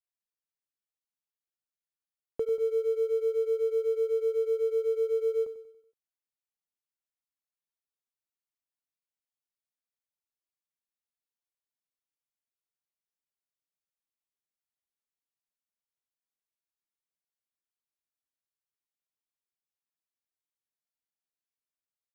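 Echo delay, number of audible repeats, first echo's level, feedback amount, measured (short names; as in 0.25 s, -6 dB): 94 ms, 4, -13.0 dB, 47%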